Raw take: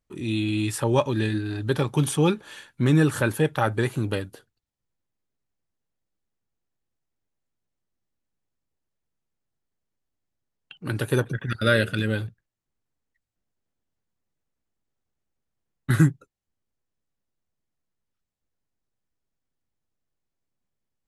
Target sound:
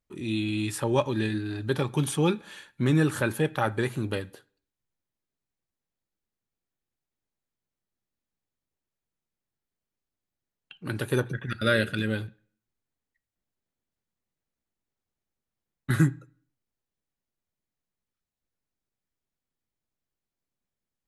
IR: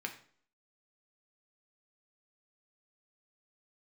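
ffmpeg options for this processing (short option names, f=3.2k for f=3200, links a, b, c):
-filter_complex "[0:a]asplit=2[a][b];[b]equalizer=f=4k:t=o:w=0.2:g=6.5[c];[1:a]atrim=start_sample=2205[d];[c][d]afir=irnorm=-1:irlink=0,volume=-11.5dB[e];[a][e]amix=inputs=2:normalize=0,volume=-4.5dB"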